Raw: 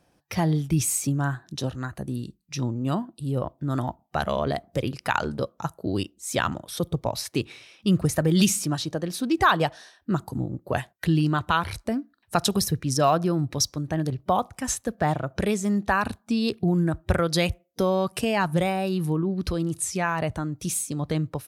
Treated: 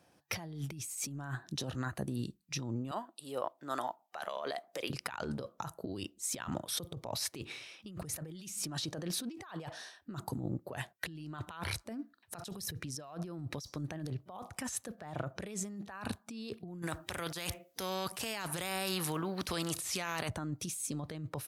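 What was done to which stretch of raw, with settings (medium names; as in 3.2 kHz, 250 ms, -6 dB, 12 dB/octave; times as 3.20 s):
2.91–4.90 s: high-pass 580 Hz
16.82–20.29 s: spectrum-flattening compressor 2:1
whole clip: high-pass 76 Hz; bass shelf 420 Hz -3.5 dB; compressor with a negative ratio -34 dBFS, ratio -1; trim -6 dB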